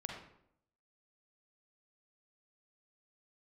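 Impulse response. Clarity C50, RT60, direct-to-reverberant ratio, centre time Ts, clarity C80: 2.0 dB, 0.70 s, 0.0 dB, 44 ms, 5.5 dB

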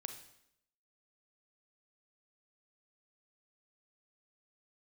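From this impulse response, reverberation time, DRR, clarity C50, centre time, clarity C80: 0.75 s, 6.5 dB, 8.0 dB, 16 ms, 11.5 dB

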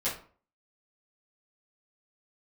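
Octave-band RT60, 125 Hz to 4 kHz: 0.45, 0.45, 0.45, 0.45, 0.35, 0.30 s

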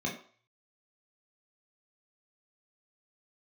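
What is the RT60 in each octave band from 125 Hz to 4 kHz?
0.60, 0.35, 0.45, 0.50, 0.50, 0.45 s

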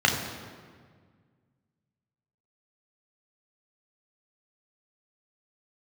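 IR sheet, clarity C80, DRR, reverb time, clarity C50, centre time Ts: 6.5 dB, 0.0 dB, 1.7 s, 5.0 dB, 46 ms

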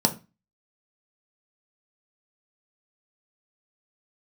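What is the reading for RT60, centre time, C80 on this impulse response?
0.25 s, 8 ms, 22.0 dB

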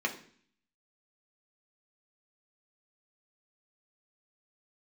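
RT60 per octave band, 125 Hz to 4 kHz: 0.70, 0.70, 0.55, 0.50, 0.55, 0.60 s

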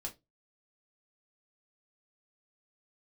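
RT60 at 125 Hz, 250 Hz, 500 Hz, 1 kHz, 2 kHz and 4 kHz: 0.30, 0.25, 0.25, 0.15, 0.15, 0.20 s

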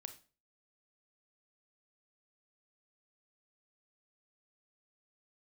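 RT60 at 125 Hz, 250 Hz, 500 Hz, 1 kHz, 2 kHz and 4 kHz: 0.45, 0.40, 0.40, 0.35, 0.35, 0.30 s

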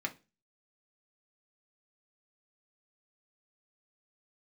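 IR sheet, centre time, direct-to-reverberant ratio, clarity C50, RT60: 6 ms, 1.5 dB, 17.5 dB, not exponential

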